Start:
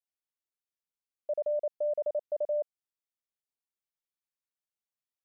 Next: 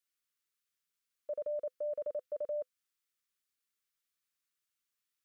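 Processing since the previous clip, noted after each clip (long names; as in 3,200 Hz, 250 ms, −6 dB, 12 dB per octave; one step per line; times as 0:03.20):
drawn EQ curve 510 Hz 0 dB, 730 Hz −15 dB, 1,200 Hz +7 dB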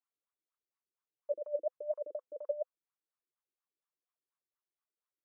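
LFO wah 4.2 Hz 320–1,100 Hz, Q 5.6
level +8.5 dB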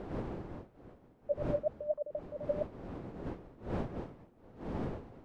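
wind on the microphone 410 Hz −44 dBFS
level +1.5 dB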